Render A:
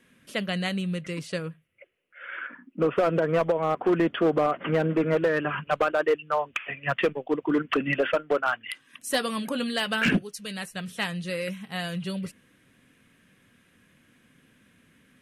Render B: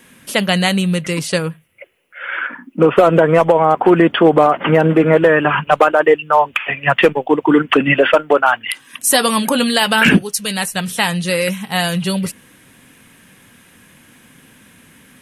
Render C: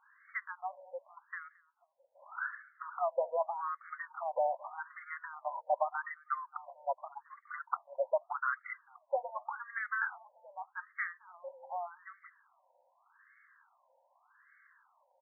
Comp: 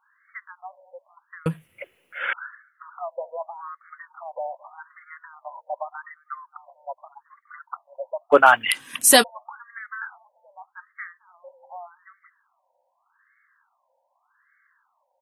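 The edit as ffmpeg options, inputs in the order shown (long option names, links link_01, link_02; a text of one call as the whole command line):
ffmpeg -i take0.wav -i take1.wav -i take2.wav -filter_complex "[1:a]asplit=2[link_01][link_02];[2:a]asplit=3[link_03][link_04][link_05];[link_03]atrim=end=1.462[link_06];[link_01]atrim=start=1.458:end=2.332[link_07];[link_04]atrim=start=2.328:end=8.34[link_08];[link_02]atrim=start=8.32:end=9.24[link_09];[link_05]atrim=start=9.22[link_10];[link_06][link_07]acrossfade=duration=0.004:curve1=hsin:curve2=hsin[link_11];[link_11][link_08]acrossfade=duration=0.004:curve1=hsin:curve2=hsin[link_12];[link_12][link_09]acrossfade=duration=0.02:curve1=tri:curve2=tri[link_13];[link_13][link_10]acrossfade=duration=0.02:curve1=tri:curve2=tri" out.wav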